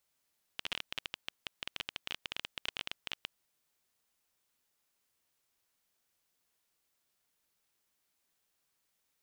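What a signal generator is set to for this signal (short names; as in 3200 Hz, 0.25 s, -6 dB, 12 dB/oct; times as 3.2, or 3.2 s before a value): random clicks 17/s -18.5 dBFS 2.70 s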